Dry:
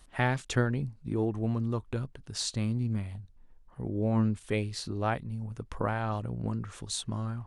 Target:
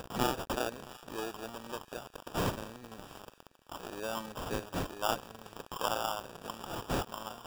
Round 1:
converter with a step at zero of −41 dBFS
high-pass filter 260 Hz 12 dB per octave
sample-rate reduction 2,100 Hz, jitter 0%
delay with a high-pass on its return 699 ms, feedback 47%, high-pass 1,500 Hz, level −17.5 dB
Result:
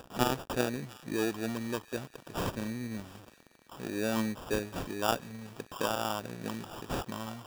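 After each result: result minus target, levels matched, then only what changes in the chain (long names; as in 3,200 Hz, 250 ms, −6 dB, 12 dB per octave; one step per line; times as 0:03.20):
converter with a step at zero: distortion −6 dB; 250 Hz band +4.0 dB
change: converter with a step at zero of −33.5 dBFS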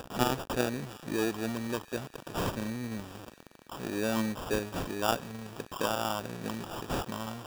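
250 Hz band +4.0 dB
change: high-pass filter 700 Hz 12 dB per octave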